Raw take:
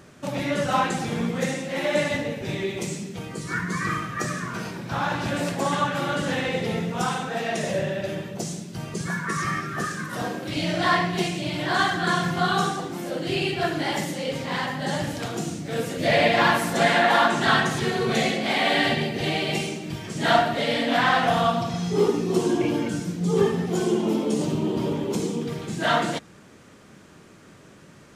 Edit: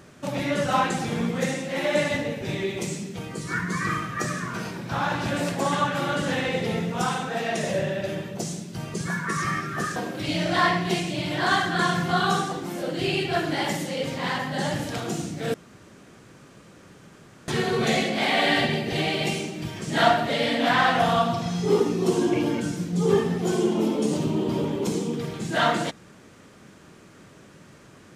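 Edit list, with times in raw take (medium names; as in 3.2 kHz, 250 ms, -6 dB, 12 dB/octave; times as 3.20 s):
9.96–10.24 s: delete
15.82–17.76 s: room tone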